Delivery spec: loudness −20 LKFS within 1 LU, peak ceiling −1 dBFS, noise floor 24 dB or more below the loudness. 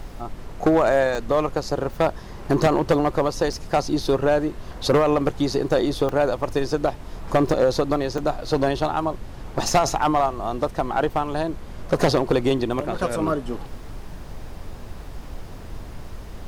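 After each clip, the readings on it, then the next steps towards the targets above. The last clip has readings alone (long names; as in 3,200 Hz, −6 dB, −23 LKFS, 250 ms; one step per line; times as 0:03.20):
number of dropouts 6; longest dropout 2.3 ms; background noise floor −38 dBFS; target noise floor −47 dBFS; integrated loudness −22.5 LKFS; sample peak −9.5 dBFS; target loudness −20.0 LKFS
→ repair the gap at 0:01.15/0:03.53/0:06.09/0:07.49/0:08.18/0:12.73, 2.3 ms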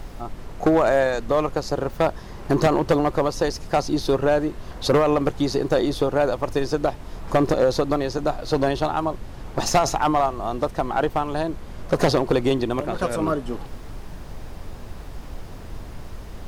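number of dropouts 0; background noise floor −38 dBFS; target noise floor −47 dBFS
→ noise reduction from a noise print 9 dB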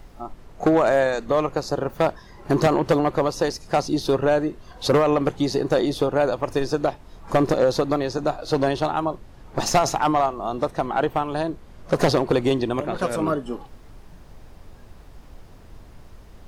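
background noise floor −46 dBFS; target noise floor −47 dBFS
→ noise reduction from a noise print 6 dB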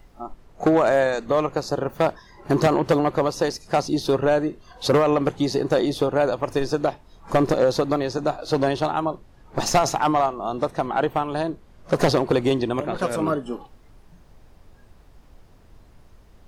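background noise floor −52 dBFS; integrated loudness −22.5 LKFS; sample peak −9.5 dBFS; target loudness −20.0 LKFS
→ level +2.5 dB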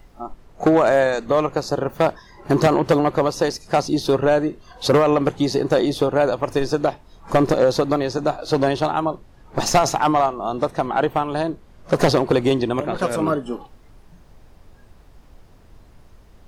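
integrated loudness −20.0 LKFS; sample peak −7.0 dBFS; background noise floor −49 dBFS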